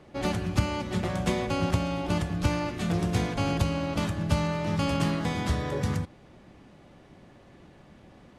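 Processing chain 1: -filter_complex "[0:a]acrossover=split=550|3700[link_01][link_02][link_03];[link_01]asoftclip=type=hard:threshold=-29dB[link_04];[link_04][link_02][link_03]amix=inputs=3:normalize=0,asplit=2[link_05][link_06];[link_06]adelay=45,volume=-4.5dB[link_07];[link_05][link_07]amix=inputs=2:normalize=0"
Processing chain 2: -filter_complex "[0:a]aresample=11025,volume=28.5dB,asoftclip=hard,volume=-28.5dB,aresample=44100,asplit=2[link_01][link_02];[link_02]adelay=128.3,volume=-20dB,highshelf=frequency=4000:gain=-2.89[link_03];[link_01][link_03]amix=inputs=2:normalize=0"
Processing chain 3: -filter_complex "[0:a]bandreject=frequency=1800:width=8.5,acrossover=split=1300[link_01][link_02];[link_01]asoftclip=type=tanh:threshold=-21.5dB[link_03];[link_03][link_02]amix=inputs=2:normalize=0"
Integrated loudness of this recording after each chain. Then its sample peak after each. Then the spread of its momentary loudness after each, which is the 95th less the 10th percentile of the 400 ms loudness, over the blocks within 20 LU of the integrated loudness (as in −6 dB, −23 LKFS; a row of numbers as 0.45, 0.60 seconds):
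−30.0, −32.5, −30.0 LKFS; −16.0, −25.0, −16.5 dBFS; 2, 2, 2 LU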